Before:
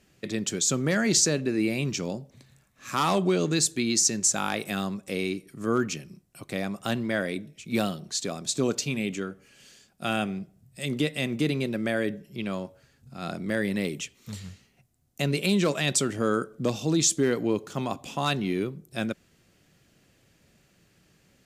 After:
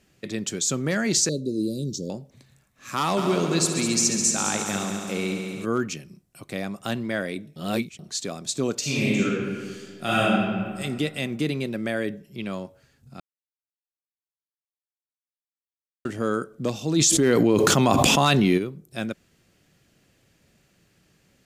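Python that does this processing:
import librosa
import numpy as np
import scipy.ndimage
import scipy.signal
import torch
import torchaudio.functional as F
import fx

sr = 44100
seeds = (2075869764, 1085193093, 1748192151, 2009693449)

y = fx.cheby1_bandstop(x, sr, low_hz=550.0, high_hz=3900.0, order=4, at=(1.29, 2.1))
y = fx.echo_heads(y, sr, ms=69, heads='all three', feedback_pct=66, wet_db=-11.5, at=(3.16, 5.64), fade=0.02)
y = fx.reverb_throw(y, sr, start_s=8.79, length_s=2.01, rt60_s=1.8, drr_db=-7.0)
y = fx.env_flatten(y, sr, amount_pct=100, at=(16.95, 18.57), fade=0.02)
y = fx.edit(y, sr, fx.reverse_span(start_s=7.56, length_s=0.43),
    fx.silence(start_s=13.2, length_s=2.85), tone=tone)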